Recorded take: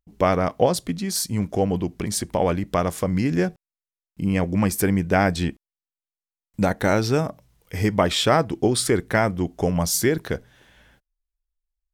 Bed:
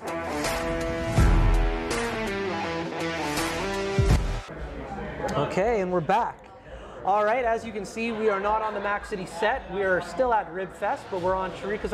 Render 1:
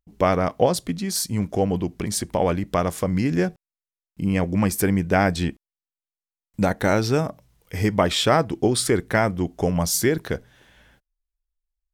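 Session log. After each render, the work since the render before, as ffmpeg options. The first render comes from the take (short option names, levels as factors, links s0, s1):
-af anull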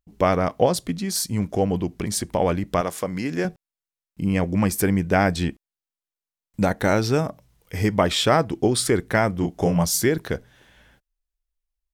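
-filter_complex "[0:a]asettb=1/sr,asplit=3[s0][s1][s2];[s0]atrim=end=2.814[s3];[s1]atrim=start=2.81:end=3.45,asetpts=PTS-STARTPTS,afade=t=in:d=0.004:c=qsin,afade=t=out:st=0.636:d=0.004:c=qsin,highpass=f=350:p=1[s4];[s2]atrim=start=3.446[s5];[s3][s4]acrossfade=d=0.004:c1=hsin:c2=qsin[s6];[s6][s5]acrossfade=d=0.004:c1=qsin:c2=hsin,asplit=3[s7][s8][s9];[s7]afade=t=out:st=9.41:d=0.02[s10];[s8]asplit=2[s11][s12];[s12]adelay=29,volume=0.631[s13];[s11][s13]amix=inputs=2:normalize=0,afade=t=in:st=9.41:d=0.02,afade=t=out:st=9.83:d=0.02[s14];[s9]afade=t=in:st=9.83:d=0.02[s15];[s10][s14][s15]amix=inputs=3:normalize=0"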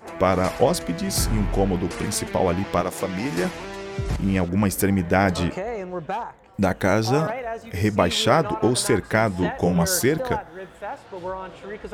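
-filter_complex "[1:a]volume=0.531[s0];[0:a][s0]amix=inputs=2:normalize=0"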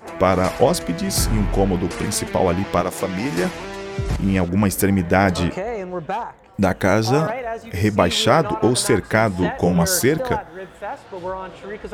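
-af "volume=1.41,alimiter=limit=0.891:level=0:latency=1"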